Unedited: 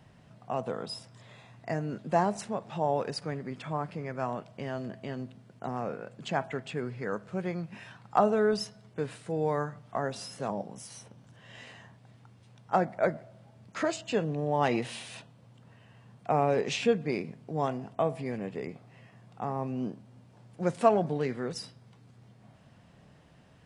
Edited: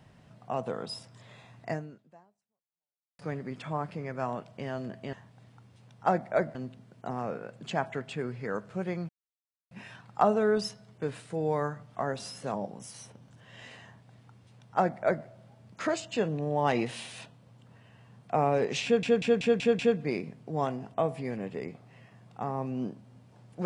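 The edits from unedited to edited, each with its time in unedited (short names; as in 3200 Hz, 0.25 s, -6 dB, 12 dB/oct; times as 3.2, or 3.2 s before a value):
1.72–3.19 fade out exponential
7.67 insert silence 0.62 s
11.8–13.22 copy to 5.13
16.8 stutter 0.19 s, 6 plays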